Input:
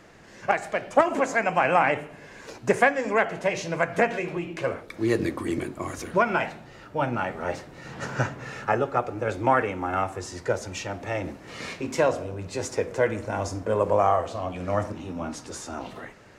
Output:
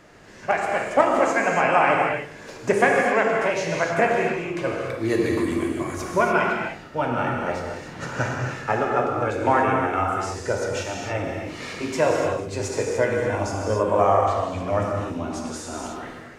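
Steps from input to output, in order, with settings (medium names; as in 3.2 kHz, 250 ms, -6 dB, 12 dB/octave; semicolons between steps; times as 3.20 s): gated-style reverb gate 320 ms flat, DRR -1 dB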